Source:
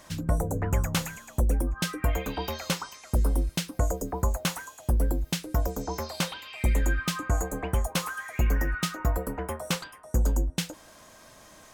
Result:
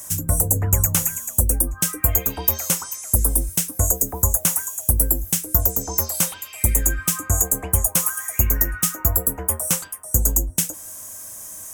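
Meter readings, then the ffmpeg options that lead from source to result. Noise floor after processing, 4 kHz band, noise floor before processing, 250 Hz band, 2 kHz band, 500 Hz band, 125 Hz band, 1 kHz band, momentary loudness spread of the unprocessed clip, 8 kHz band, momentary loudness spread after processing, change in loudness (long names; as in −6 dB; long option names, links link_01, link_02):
−39 dBFS, +1.5 dB, −52 dBFS, +1.5 dB, +1.0 dB, +1.0 dB, +4.5 dB, +1.0 dB, 6 LU, +18.0 dB, 5 LU, +10.0 dB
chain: -filter_complex "[0:a]equalizer=frequency=91:width=3.7:gain=11.5,acrossover=split=400|880|4900[link_01][link_02][link_03][link_04];[link_04]alimiter=level_in=5dB:limit=-24dB:level=0:latency=1:release=292,volume=-5dB[link_05];[link_01][link_02][link_03][link_05]amix=inputs=4:normalize=0,aexciter=amount=14.4:drive=4.5:freq=6300,volume=1dB"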